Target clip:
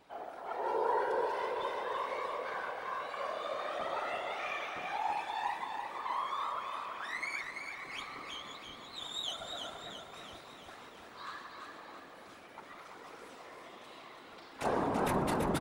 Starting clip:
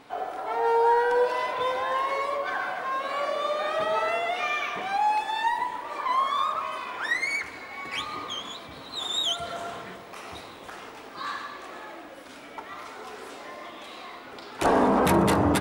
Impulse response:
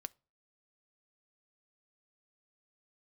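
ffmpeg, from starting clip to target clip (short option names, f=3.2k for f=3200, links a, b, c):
-af "afftfilt=real='hypot(re,im)*cos(2*PI*random(0))':imag='hypot(re,im)*sin(2*PI*random(1))':win_size=512:overlap=0.75,aecho=1:1:335|670|1005|1340|1675|2010|2345:0.531|0.287|0.155|0.0836|0.0451|0.0244|0.0132,volume=-5.5dB"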